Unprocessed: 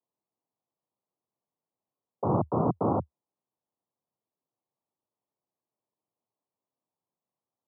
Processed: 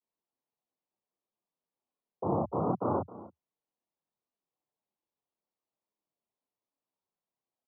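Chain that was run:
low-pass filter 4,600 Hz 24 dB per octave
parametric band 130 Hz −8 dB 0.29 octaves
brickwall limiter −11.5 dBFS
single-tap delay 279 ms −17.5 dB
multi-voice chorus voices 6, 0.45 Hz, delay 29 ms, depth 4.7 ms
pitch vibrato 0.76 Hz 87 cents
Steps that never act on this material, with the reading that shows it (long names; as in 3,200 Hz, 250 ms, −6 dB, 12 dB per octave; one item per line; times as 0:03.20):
low-pass filter 4,600 Hz: nothing at its input above 1,400 Hz
brickwall limiter −11.5 dBFS: peak of its input −14.0 dBFS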